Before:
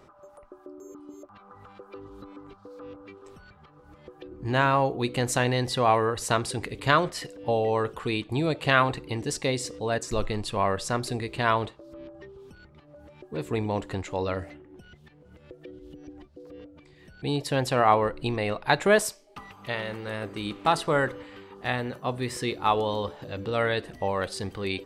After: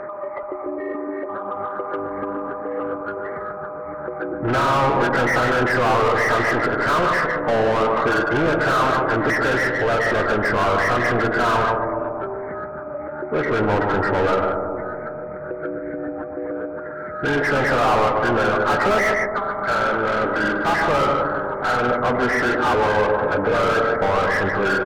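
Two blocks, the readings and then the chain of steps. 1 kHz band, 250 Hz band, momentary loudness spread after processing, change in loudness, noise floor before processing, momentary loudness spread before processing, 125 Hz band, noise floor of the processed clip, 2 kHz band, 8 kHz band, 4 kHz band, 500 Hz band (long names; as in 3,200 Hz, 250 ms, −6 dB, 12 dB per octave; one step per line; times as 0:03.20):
+8.5 dB, +7.5 dB, 12 LU, +6.5 dB, −55 dBFS, 23 LU, +3.0 dB, −31 dBFS, +11.0 dB, −3.0 dB, +2.5 dB, +8.5 dB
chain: hearing-aid frequency compression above 1,200 Hz 4 to 1
far-end echo of a speakerphone 150 ms, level −13 dB
mid-hump overdrive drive 35 dB, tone 1,800 Hz, clips at −6.5 dBFS
on a send: bucket-brigade delay 123 ms, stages 1,024, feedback 75%, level −6 dB
on the sum: steady tone 610 Hz −26 dBFS
level −5 dB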